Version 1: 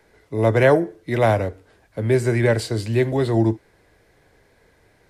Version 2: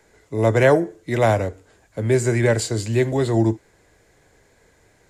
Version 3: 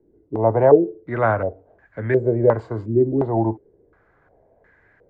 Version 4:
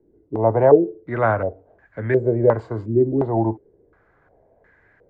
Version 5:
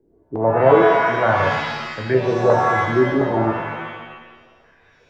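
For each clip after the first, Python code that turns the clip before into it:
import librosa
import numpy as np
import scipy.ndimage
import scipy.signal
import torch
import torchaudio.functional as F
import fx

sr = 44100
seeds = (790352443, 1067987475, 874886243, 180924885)

y1 = fx.peak_eq(x, sr, hz=7100.0, db=12.5, octaves=0.37)
y2 = fx.filter_held_lowpass(y1, sr, hz=2.8, low_hz=330.0, high_hz=1700.0)
y2 = F.gain(torch.from_numpy(y2), -4.0).numpy()
y3 = y2
y4 = fx.rev_shimmer(y3, sr, seeds[0], rt60_s=1.2, semitones=7, shimmer_db=-2, drr_db=3.0)
y4 = F.gain(torch.from_numpy(y4), -1.0).numpy()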